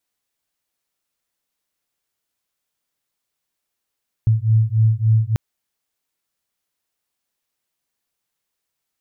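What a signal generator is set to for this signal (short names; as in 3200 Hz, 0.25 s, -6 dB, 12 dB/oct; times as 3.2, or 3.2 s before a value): beating tones 109 Hz, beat 3.5 Hz, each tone -16 dBFS 1.09 s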